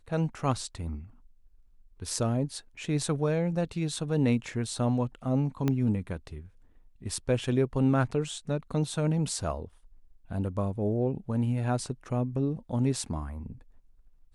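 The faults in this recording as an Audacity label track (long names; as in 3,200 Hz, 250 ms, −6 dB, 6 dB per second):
5.680000	5.680000	click −15 dBFS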